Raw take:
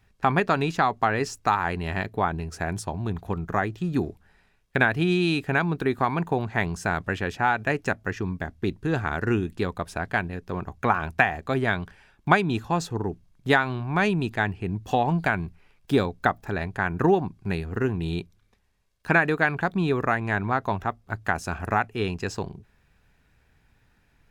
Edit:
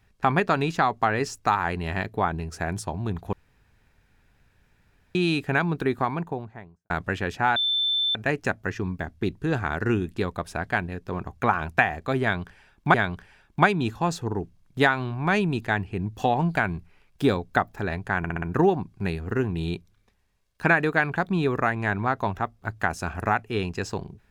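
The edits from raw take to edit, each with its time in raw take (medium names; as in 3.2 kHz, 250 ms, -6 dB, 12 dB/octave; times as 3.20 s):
3.33–5.15 s: room tone
5.79–6.90 s: studio fade out
7.56 s: add tone 3.54 kHz -21 dBFS 0.59 s
11.63–12.35 s: loop, 2 plays
16.87 s: stutter 0.06 s, 5 plays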